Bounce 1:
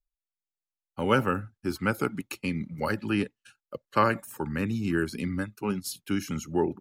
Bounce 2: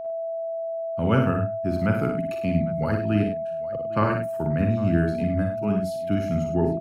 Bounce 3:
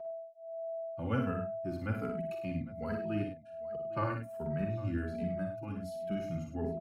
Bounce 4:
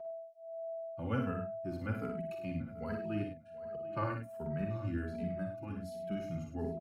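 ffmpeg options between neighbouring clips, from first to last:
ffmpeg -i in.wav -af "bass=frequency=250:gain=12,treble=frequency=4000:gain=-10,aeval=exprs='val(0)+0.0398*sin(2*PI*660*n/s)':channel_layout=same,aecho=1:1:47|59|102|805:0.355|0.473|0.335|0.112,volume=-3dB" out.wav
ffmpeg -i in.wav -filter_complex "[0:a]asplit=2[link_01][link_02];[link_02]adelay=2.7,afreqshift=-1.3[link_03];[link_01][link_03]amix=inputs=2:normalize=1,volume=-9dB" out.wav
ffmpeg -i in.wav -af "aecho=1:1:734:0.106,volume=-2dB" out.wav

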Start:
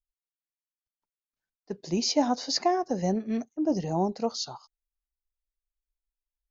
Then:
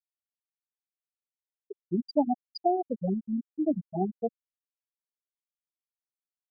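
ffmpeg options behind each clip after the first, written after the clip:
ffmpeg -i in.wav -af "afftfilt=real='re*gte(hypot(re,im),0.316)':imag='im*gte(hypot(re,im),0.316)':win_size=1024:overlap=0.75" out.wav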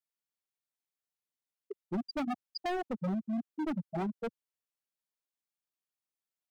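ffmpeg -i in.wav -filter_complex "[0:a]highpass=78,acrossover=split=120|2100[link_01][link_02][link_03];[link_02]volume=31.5dB,asoftclip=hard,volume=-31.5dB[link_04];[link_01][link_04][link_03]amix=inputs=3:normalize=0" out.wav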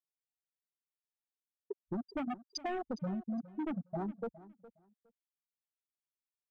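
ffmpeg -i in.wav -af "afwtdn=0.00562,acompressor=threshold=-39dB:ratio=6,aecho=1:1:412|824:0.126|0.0239,volume=3.5dB" out.wav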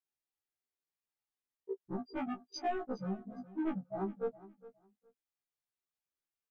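ffmpeg -i in.wav -filter_complex "[0:a]highshelf=frequency=3100:gain=-6,asplit=2[link_01][link_02];[link_02]adelay=13,volume=-9dB[link_03];[link_01][link_03]amix=inputs=2:normalize=0,afftfilt=real='re*1.73*eq(mod(b,3),0)':imag='im*1.73*eq(mod(b,3),0)':win_size=2048:overlap=0.75,volume=3dB" out.wav

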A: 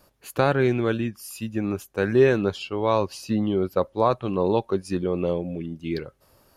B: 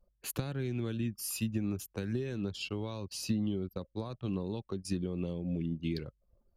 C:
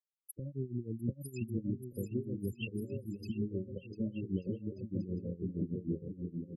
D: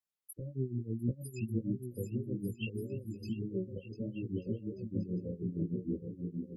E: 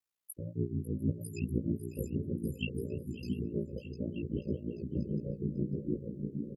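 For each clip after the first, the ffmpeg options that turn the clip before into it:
ffmpeg -i in.wav -filter_complex "[0:a]acompressor=threshold=-27dB:ratio=10,anlmdn=0.01,acrossover=split=270|3000[link_01][link_02][link_03];[link_02]acompressor=threshold=-52dB:ratio=2.5[link_04];[link_01][link_04][link_03]amix=inputs=3:normalize=0,volume=1.5dB" out.wav
ffmpeg -i in.wav -af "afftfilt=real='re*gte(hypot(re,im),0.0447)':imag='im*gte(hypot(re,im),0.0447)':win_size=1024:overlap=0.75,aecho=1:1:700|1190|1533|1773|1941:0.631|0.398|0.251|0.158|0.1,tremolo=f=6.4:d=0.86" out.wav
ffmpeg -i in.wav -af "flanger=delay=15.5:depth=3:speed=1.7,volume=3.5dB" out.wav
ffmpeg -i in.wav -af "aeval=exprs='val(0)*sin(2*PI*29*n/s)':channel_layout=same,aecho=1:1:548:0.188,volume=4.5dB" out.wav

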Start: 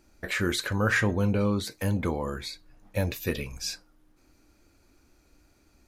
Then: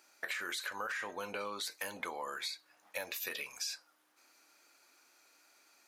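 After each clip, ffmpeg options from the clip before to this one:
ffmpeg -i in.wav -af "highpass=870,alimiter=limit=-24dB:level=0:latency=1:release=25,acompressor=threshold=-40dB:ratio=6,volume=3.5dB" out.wav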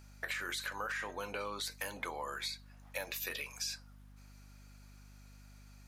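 ffmpeg -i in.wav -af "aeval=exprs='val(0)+0.00178*(sin(2*PI*50*n/s)+sin(2*PI*2*50*n/s)/2+sin(2*PI*3*50*n/s)/3+sin(2*PI*4*50*n/s)/4+sin(2*PI*5*50*n/s)/5)':channel_layout=same" out.wav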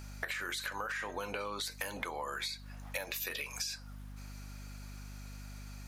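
ffmpeg -i in.wav -af "acompressor=threshold=-45dB:ratio=6,volume=9.5dB" out.wav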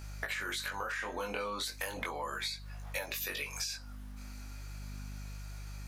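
ffmpeg -i in.wav -af "flanger=delay=18:depth=5.9:speed=0.36,volume=4dB" out.wav

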